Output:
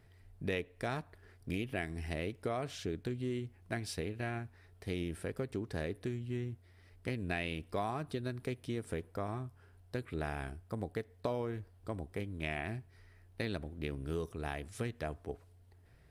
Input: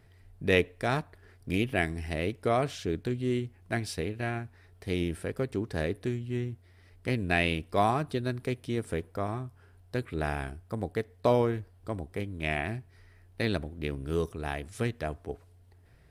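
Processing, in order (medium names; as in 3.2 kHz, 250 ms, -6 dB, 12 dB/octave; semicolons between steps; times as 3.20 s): compression 4:1, threshold -30 dBFS, peak gain reduction 10 dB; trim -3.5 dB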